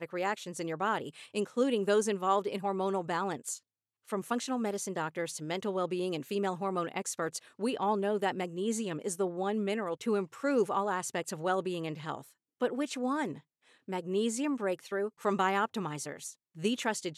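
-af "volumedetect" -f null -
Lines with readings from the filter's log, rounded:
mean_volume: -33.1 dB
max_volume: -15.2 dB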